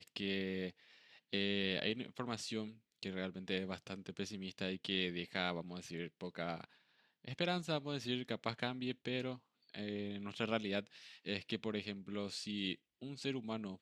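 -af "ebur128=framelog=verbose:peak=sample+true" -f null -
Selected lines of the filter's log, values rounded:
Integrated loudness:
  I:         -41.1 LUFS
  Threshold: -51.4 LUFS
Loudness range:
  LRA:         1.6 LU
  Threshold: -61.5 LUFS
  LRA low:   -42.3 LUFS
  LRA high:  -40.7 LUFS
Sample peak:
  Peak:      -19.1 dBFS
True peak:
  Peak:      -19.1 dBFS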